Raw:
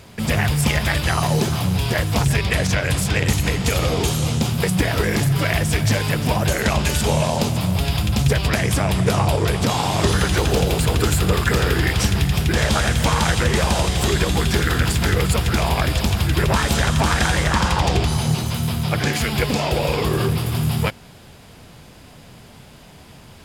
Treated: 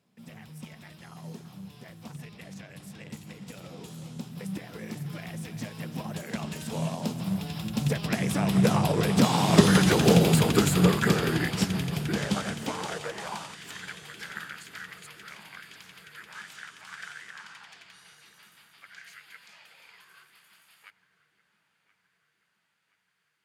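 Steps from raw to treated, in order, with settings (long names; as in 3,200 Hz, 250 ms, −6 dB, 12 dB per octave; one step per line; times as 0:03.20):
source passing by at 0:09.99, 17 m/s, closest 21 metres
high-pass filter sweep 180 Hz → 1,600 Hz, 0:12.52–0:13.61
feedback echo with a low-pass in the loop 1,025 ms, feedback 62%, low-pass 3,000 Hz, level −18 dB
expander for the loud parts 1.5 to 1, over −34 dBFS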